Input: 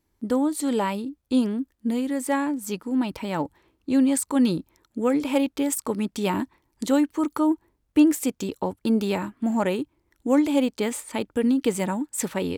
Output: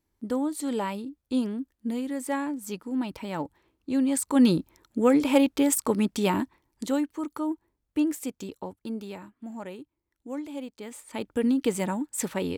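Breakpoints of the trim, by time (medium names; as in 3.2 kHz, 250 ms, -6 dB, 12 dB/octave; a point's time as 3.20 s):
4.03 s -5 dB
4.47 s +2 dB
6.07 s +2 dB
7.22 s -8 dB
8.44 s -8 dB
9.24 s -15 dB
10.83 s -15 dB
11.30 s -2.5 dB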